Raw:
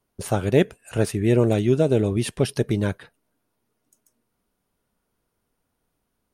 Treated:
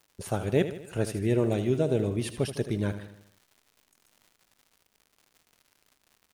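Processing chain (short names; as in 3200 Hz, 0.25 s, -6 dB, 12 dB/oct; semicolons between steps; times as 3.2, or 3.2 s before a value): crackle 180/s -40 dBFS; on a send: feedback echo 78 ms, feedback 52%, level -11.5 dB; on the sum: gain -7 dB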